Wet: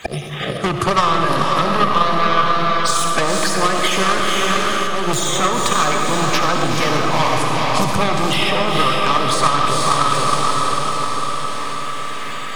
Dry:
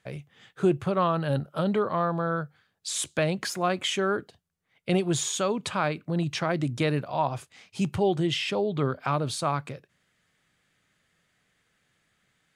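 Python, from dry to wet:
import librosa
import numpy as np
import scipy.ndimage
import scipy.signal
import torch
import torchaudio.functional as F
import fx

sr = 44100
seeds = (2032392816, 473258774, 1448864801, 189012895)

p1 = fx.spec_quant(x, sr, step_db=30)
p2 = fx.fold_sine(p1, sr, drive_db=15, ceiling_db=-12.0)
p3 = p1 + F.gain(torch.from_numpy(p2), -11.0).numpy()
p4 = fx.notch(p3, sr, hz=1400.0, q=7.5)
p5 = p4 + fx.echo_diffused(p4, sr, ms=468, feedback_pct=42, wet_db=-4.5, dry=0)
p6 = fx.rider(p5, sr, range_db=10, speed_s=0.5)
p7 = fx.low_shelf(p6, sr, hz=470.0, db=-6.5)
p8 = fx.auto_swell(p7, sr, attack_ms=268.0)
p9 = fx.peak_eq(p8, sr, hz=1200.0, db=10.5, octaves=0.33)
p10 = fx.rev_freeverb(p9, sr, rt60_s=1.7, hf_ratio=0.7, predelay_ms=25, drr_db=2.5)
p11 = fx.transient(p10, sr, attack_db=10, sustain_db=6)
p12 = fx.band_squash(p11, sr, depth_pct=70)
y = F.gain(torch.from_numpy(p12), 2.0).numpy()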